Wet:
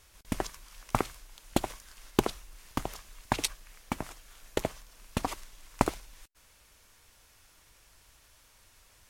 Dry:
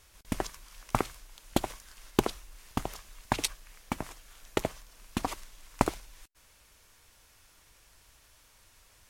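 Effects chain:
regular buffer underruns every 0.12 s, samples 64, repeat, from 0:00.73

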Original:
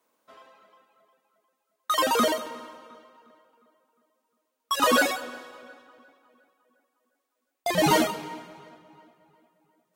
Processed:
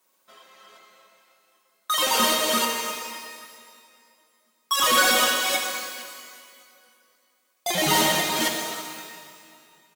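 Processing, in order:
delay that plays each chunk backwards 265 ms, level −2 dB
high-shelf EQ 2,100 Hz +11.5 dB
soft clipping −13.5 dBFS, distortion −14 dB
comb filter 5.4 ms, depth 46%
reverb with rising layers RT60 1.8 s, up +12 semitones, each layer −8 dB, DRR 1.5 dB
level −3.5 dB

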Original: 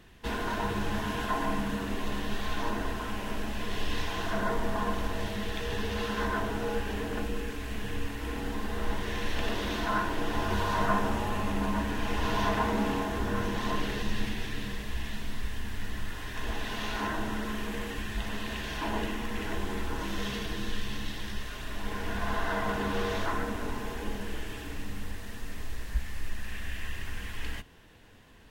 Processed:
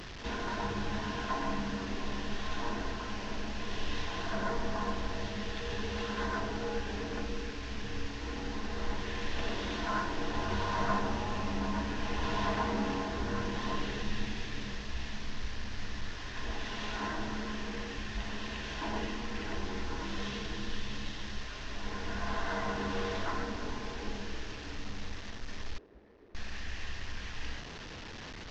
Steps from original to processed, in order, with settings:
linear delta modulator 32 kbit/s, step −34.5 dBFS
0:25.78–0:26.35: resonant band-pass 390 Hz, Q 2.7
level −4 dB

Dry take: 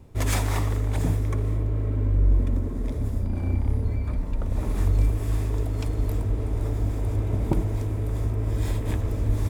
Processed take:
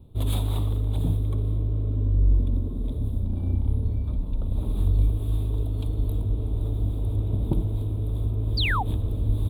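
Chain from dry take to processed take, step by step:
drawn EQ curve 180 Hz 0 dB, 1,200 Hz −10 dB, 1,900 Hz −23 dB, 3,700 Hz +3 dB, 5,500 Hz −29 dB, 10,000 Hz −4 dB
sound drawn into the spectrogram fall, 0:08.57–0:08.83, 700–5,000 Hz −26 dBFS

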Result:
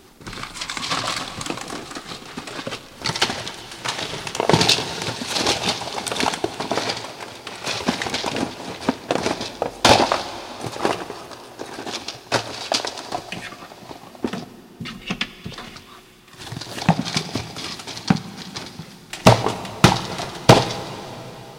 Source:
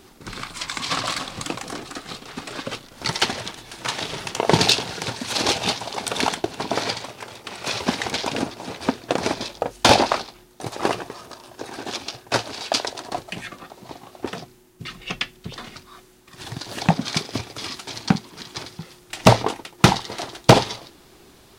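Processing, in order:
0:14.05–0:15.35: parametric band 220 Hz +12 dB 0.51 octaves
dense smooth reverb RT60 4 s, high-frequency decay 1×, DRR 12.5 dB
level +1 dB

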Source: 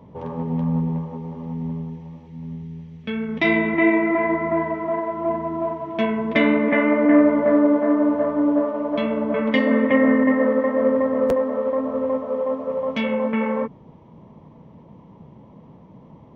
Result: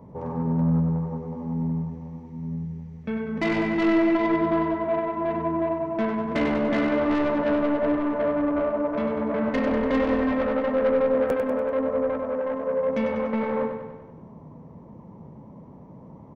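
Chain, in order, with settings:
parametric band 3,200 Hz −14.5 dB 0.95 octaves
soft clipping −19.5 dBFS, distortion −10 dB
on a send: repeating echo 97 ms, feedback 57%, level −7 dB

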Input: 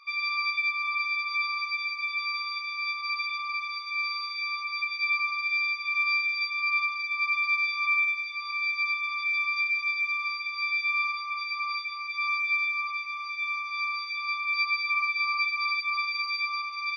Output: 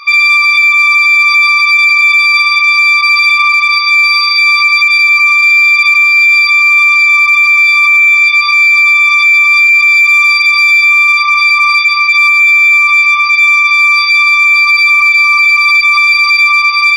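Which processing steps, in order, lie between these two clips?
dynamic equaliser 2,600 Hz, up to +8 dB, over −42 dBFS, Q 1.8
on a send: feedback echo with a high-pass in the loop 233 ms, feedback 79%, high-pass 1,100 Hz, level −23.5 dB
on the sum: four-comb reverb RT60 2.9 s, combs from 27 ms, DRR 14 dB
in parallel at −11 dB: gain into a clipping stage and back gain 28.5 dB
0:09.94–0:10.78: on the sum: bass and treble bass +1 dB, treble +3 dB
boost into a limiter +22.5 dB
level −1 dB

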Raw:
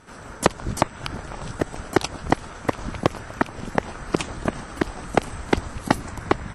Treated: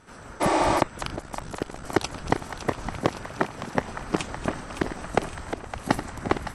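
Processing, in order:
feedback delay that plays each chunk backwards 541 ms, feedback 68%, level −12 dB
0:01.16–0:01.84: amplitude modulation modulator 65 Hz, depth 85%
0:02.99–0:03.76: high-pass filter 93 Hz
0:05.24–0:05.88: downward compressor, threshold −28 dBFS, peak gain reduction 15 dB
echo with a time of its own for lows and highs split 640 Hz, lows 358 ms, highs 562 ms, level −10 dB
0:00.43–0:00.77: healed spectral selection 280–10,000 Hz after
level −3.5 dB

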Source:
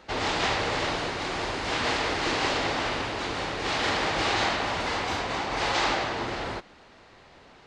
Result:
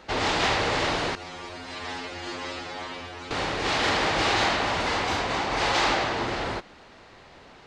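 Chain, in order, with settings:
0:01.15–0:03.31: stiff-string resonator 86 Hz, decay 0.49 s, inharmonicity 0.002
soft clipping −15 dBFS, distortion −26 dB
level +3 dB

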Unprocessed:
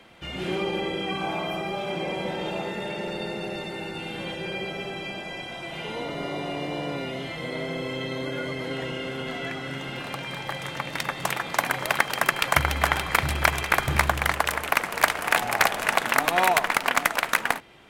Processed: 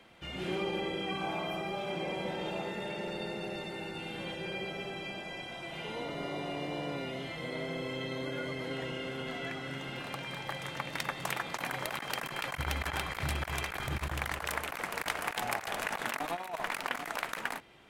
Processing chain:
compressor whose output falls as the input rises −25 dBFS, ratio −0.5
level −8 dB

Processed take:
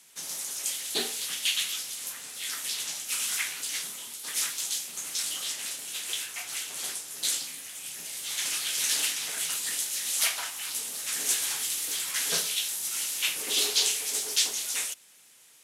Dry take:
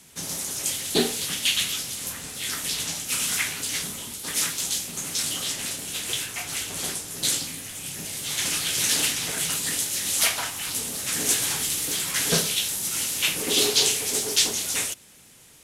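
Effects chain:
high-pass filter 990 Hz 6 dB per octave
level −4 dB

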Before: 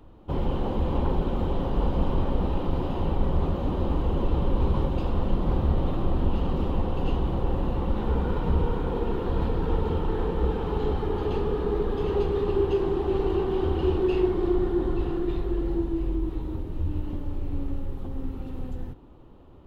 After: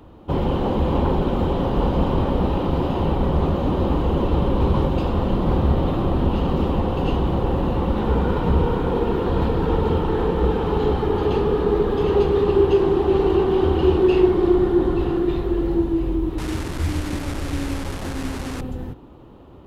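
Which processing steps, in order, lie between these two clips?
0:16.38–0:18.61: linear delta modulator 64 kbit/s, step −33 dBFS
high-pass filter 71 Hz 6 dB per octave
level +8 dB

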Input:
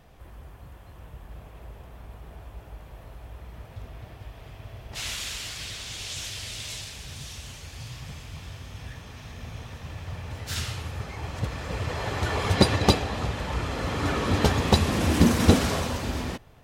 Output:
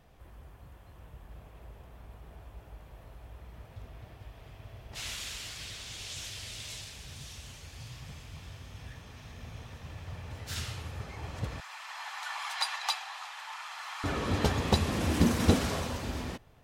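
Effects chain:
0:11.60–0:14.04: Butterworth high-pass 800 Hz 48 dB per octave
level −6 dB

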